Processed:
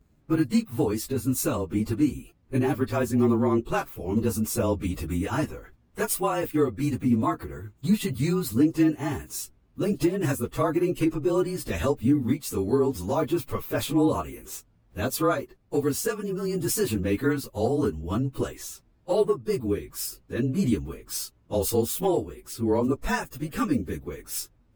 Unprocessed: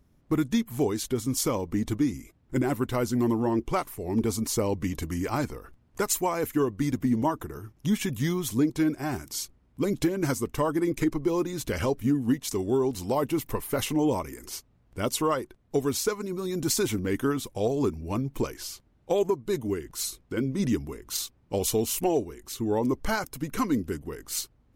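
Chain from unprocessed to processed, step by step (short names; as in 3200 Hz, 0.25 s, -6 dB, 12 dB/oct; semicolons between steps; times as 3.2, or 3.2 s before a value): inharmonic rescaling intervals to 108%; gain +4 dB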